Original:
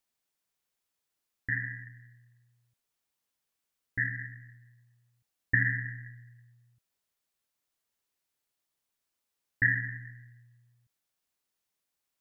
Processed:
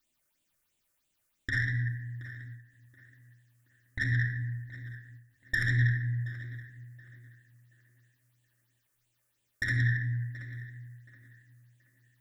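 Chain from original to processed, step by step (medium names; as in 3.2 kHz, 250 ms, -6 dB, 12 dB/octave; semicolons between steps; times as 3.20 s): dynamic bell 350 Hz, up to -6 dB, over -48 dBFS, Q 0.84; in parallel at -1 dB: compressor with a negative ratio -32 dBFS, ratio -0.5; on the sum: phase shifter stages 6, 3 Hz, lowest notch 210–1600 Hz; saturation -24.5 dBFS, distortion -10 dB; on a send: tape echo 726 ms, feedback 36%, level -13 dB, low-pass 2.1 kHz; on the sum: simulated room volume 3100 m³, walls furnished, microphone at 2.6 m; endings held to a fixed fall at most 110 dB/s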